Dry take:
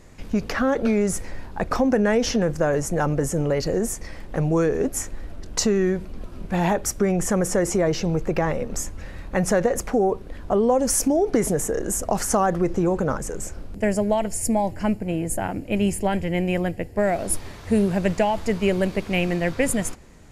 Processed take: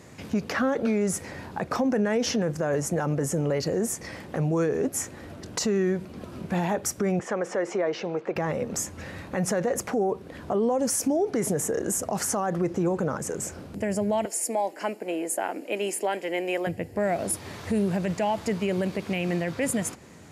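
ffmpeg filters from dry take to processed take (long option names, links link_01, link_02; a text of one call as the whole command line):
ffmpeg -i in.wav -filter_complex "[0:a]asettb=1/sr,asplit=3[link_01][link_02][link_03];[link_01]atrim=end=7.194[link_04];[link_02]atrim=start=7.19:end=8.36,asetpts=PTS-STARTPTS,afade=type=in:duration=0.004:curve=qsin,afade=type=out:start_time=1.166:duration=0.004:curve=qsin,highpass=400,lowpass=3200[link_05];[link_03]atrim=start=8.356[link_06];[link_04][link_05]acrossfade=duration=0.004:curve1=hsin:curve2=qsin[link_07];[link_07][link_06]acrossfade=duration=0.004:curve1=qsin:curve2=hsin,asettb=1/sr,asplit=3[link_08][link_09][link_10];[link_08]atrim=end=14.254[link_11];[link_09]atrim=start=14.25:end=16.67,asetpts=PTS-STARTPTS,afade=type=in:duration=0.004:curve=qsin,afade=type=out:start_time=2.416:duration=0.004:curve=qsin,highpass=frequency=330:width=0.5412,highpass=frequency=330:width=1.3066[link_12];[link_10]atrim=start=16.666[link_13];[link_11][link_12]acrossfade=duration=0.004:curve1=hsin:curve2=qsin[link_14];[link_14][link_13]acrossfade=duration=0.004:curve1=qsin:curve2=hsin,highpass=frequency=92:width=0.5412,highpass=frequency=92:width=1.3066,acompressor=threshold=-34dB:ratio=1.5,alimiter=limit=-20dB:level=0:latency=1:release=23,volume=3dB" out.wav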